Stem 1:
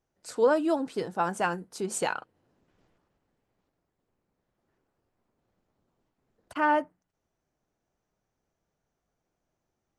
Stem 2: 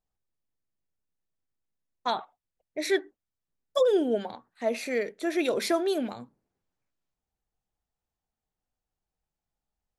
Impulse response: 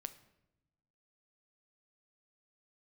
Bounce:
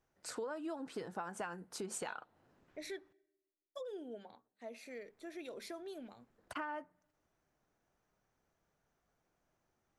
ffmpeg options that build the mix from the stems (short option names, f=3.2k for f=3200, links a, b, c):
-filter_complex "[0:a]equalizer=f=1.5k:w=0.82:g=5,acompressor=threshold=-27dB:ratio=6,volume=-1.5dB,asplit=3[a][b][c];[a]atrim=end=3.13,asetpts=PTS-STARTPTS,afade=t=out:st=3.126:d=0.004:c=hsin[d];[b]atrim=start=3.13:end=4.87,asetpts=PTS-STARTPTS,volume=0[e];[c]atrim=start=4.87,asetpts=PTS-STARTPTS,afade=t=in:d=0.004:c=hsin[f];[d][e][f]concat=n=3:v=0:a=1,asplit=3[g][h][i];[h]volume=-20dB[j];[1:a]agate=range=-10dB:threshold=-59dB:ratio=16:detection=peak,volume=-8.5dB,afade=t=out:st=2.78:d=0.35:silence=0.298538,asplit=2[k][l];[l]volume=-13.5dB[m];[i]apad=whole_len=440242[n];[k][n]sidechaincompress=threshold=-40dB:ratio=8:attack=5.1:release=1050[o];[2:a]atrim=start_sample=2205[p];[j][m]amix=inputs=2:normalize=0[q];[q][p]afir=irnorm=-1:irlink=0[r];[g][o][r]amix=inputs=3:normalize=0,acompressor=threshold=-44dB:ratio=2.5"